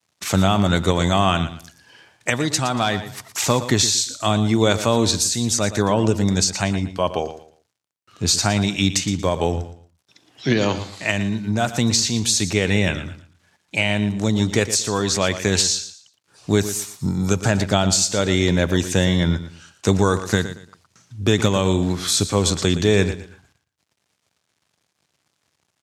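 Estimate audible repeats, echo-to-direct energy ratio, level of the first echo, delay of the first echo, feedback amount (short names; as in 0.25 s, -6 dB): 2, -12.0 dB, -12.5 dB, 0.116 s, 26%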